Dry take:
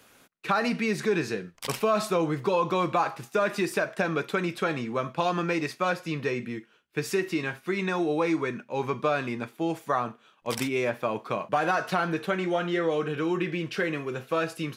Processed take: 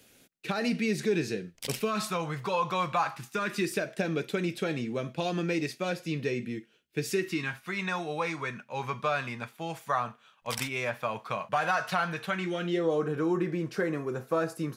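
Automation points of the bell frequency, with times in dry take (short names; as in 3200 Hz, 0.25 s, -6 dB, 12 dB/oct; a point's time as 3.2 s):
bell -14 dB 1.1 oct
1.73 s 1100 Hz
2.25 s 320 Hz
2.88 s 320 Hz
3.86 s 1100 Hz
7.09 s 1100 Hz
7.65 s 330 Hz
12.26 s 330 Hz
13.02 s 2900 Hz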